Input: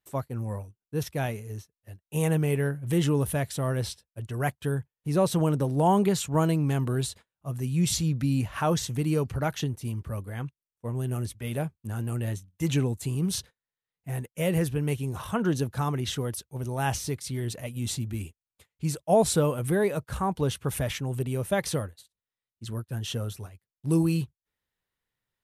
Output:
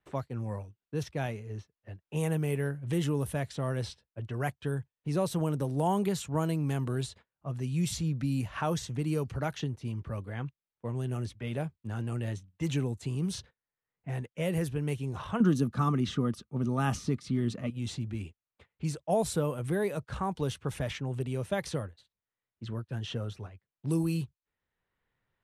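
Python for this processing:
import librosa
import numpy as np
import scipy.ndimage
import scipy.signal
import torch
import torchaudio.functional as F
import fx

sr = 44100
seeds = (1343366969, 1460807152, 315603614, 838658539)

y = fx.env_lowpass(x, sr, base_hz=2300.0, full_db=-20.5)
y = fx.small_body(y, sr, hz=(220.0, 1200.0), ring_ms=30, db=15, at=(15.4, 17.7))
y = fx.band_squash(y, sr, depth_pct=40)
y = F.gain(torch.from_numpy(y), -5.0).numpy()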